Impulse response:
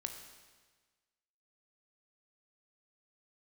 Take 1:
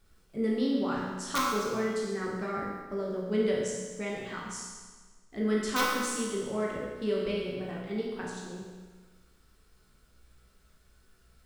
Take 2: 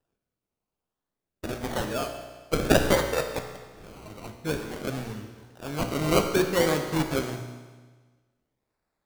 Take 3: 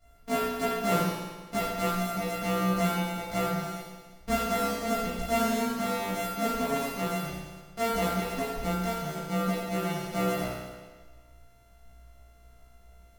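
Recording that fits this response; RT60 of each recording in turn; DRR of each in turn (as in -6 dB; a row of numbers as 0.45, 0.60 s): 2; 1.4, 1.4, 1.4 s; -4.5, 4.5, -13.5 dB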